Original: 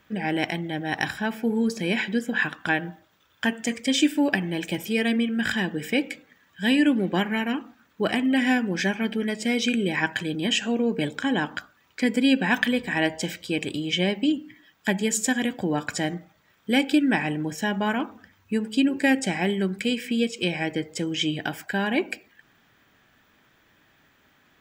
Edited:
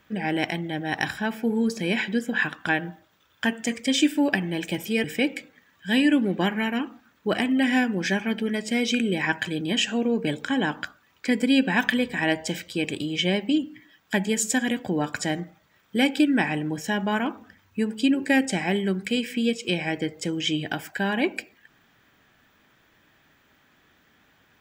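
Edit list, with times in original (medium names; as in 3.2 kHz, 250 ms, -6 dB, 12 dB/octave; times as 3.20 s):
5.04–5.78 s: delete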